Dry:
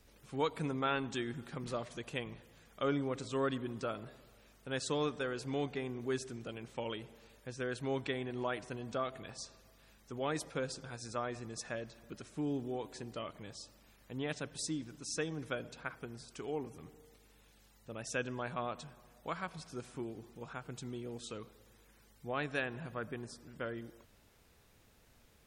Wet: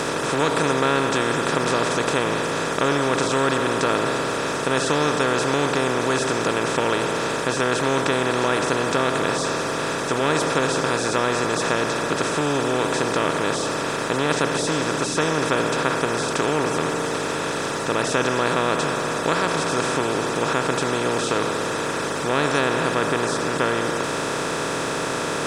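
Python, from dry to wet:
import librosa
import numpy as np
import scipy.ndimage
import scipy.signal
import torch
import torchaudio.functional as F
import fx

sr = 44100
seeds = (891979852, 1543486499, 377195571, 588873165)

y = fx.bin_compress(x, sr, power=0.2)
y = y * 10.0 ** (6.5 / 20.0)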